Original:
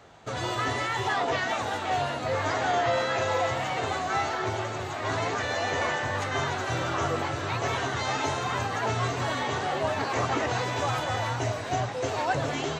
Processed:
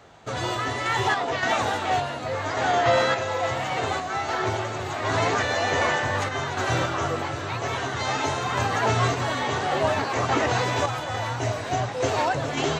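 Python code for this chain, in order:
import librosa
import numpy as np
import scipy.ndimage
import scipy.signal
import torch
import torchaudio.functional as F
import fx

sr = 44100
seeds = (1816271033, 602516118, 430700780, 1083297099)

y = fx.tremolo_random(x, sr, seeds[0], hz=3.5, depth_pct=55)
y = F.gain(torch.from_numpy(y), 6.0).numpy()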